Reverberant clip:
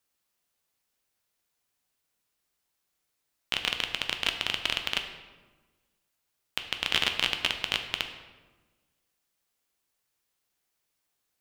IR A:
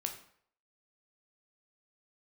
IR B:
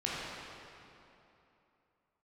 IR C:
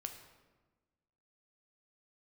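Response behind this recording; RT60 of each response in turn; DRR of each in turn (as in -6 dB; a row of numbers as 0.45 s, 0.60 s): C; 0.60 s, 3.0 s, 1.3 s; 4.0 dB, -7.5 dB, 5.0 dB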